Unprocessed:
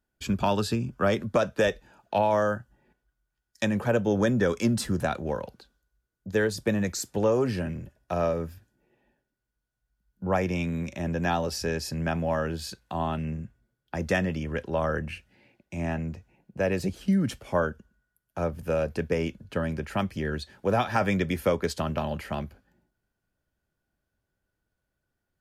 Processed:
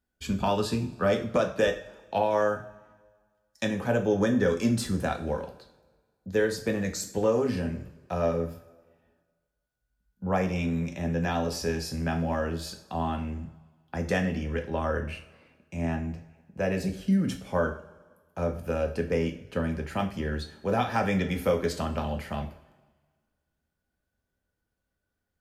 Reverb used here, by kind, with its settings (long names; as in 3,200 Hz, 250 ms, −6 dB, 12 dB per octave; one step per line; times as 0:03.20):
coupled-rooms reverb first 0.4 s, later 1.6 s, from −18 dB, DRR 3.5 dB
level −3 dB